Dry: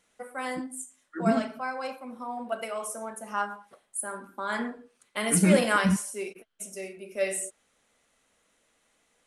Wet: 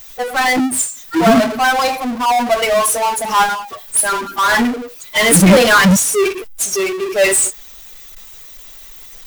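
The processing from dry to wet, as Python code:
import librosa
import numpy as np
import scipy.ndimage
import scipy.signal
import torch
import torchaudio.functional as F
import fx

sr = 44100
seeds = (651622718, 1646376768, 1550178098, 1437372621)

y = fx.bin_expand(x, sr, power=2.0)
y = fx.power_curve(y, sr, exponent=0.35)
y = F.gain(torch.from_numpy(y), 8.5).numpy()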